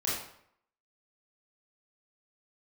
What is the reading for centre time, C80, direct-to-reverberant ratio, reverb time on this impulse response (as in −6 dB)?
57 ms, 5.0 dB, −7.5 dB, 0.70 s